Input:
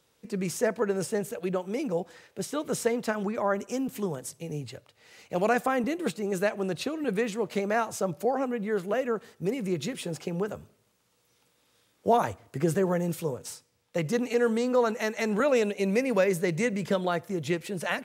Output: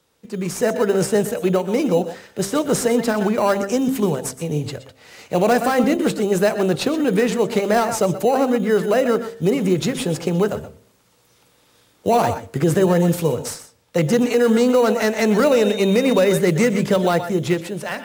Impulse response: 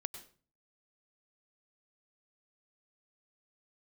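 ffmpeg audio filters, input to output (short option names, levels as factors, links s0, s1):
-filter_complex "[1:a]atrim=start_sample=2205,atrim=end_sample=4410,asetrate=33957,aresample=44100[s0];[0:a][s0]afir=irnorm=-1:irlink=0,dynaudnorm=f=100:g=13:m=2.51,asplit=2[s1][s2];[s2]acrusher=samples=13:mix=1:aa=0.000001,volume=0.299[s3];[s1][s3]amix=inputs=2:normalize=0,bandreject=f=65.63:t=h:w=4,bandreject=f=131.26:t=h:w=4,bandreject=f=196.89:t=h:w=4,bandreject=f=262.52:t=h:w=4,bandreject=f=328.15:t=h:w=4,bandreject=f=393.78:t=h:w=4,bandreject=f=459.41:t=h:w=4,bandreject=f=525.04:t=h:w=4,bandreject=f=590.67:t=h:w=4,bandreject=f=656.3:t=h:w=4,acrossover=split=760|3300[s4][s5][s6];[s5]asoftclip=type=tanh:threshold=0.0841[s7];[s4][s7][s6]amix=inputs=3:normalize=0,asettb=1/sr,asplit=3[s8][s9][s10];[s8]atrim=end=15.514[s11];[s9]atrim=start=15.51:end=16.38,asetpts=PTS-STARTPTS,afade=t=in:d=0.004:c=qsin,afade=t=out:st=0.866:d=0.004:c=qsin,aeval=exprs='val(0)+0.0178*sin(2*PI*3700*n/s)':c=same[s12];[s10]atrim=start=16.376[s13];[s11][s12]acrossfade=d=0.004:c1=hsin:c2=qsin[s14];[s14][s13]acrossfade=d=0.004:c1=qsin:c2=hsin,alimiter=level_in=2.99:limit=0.891:release=50:level=0:latency=1,volume=0.473"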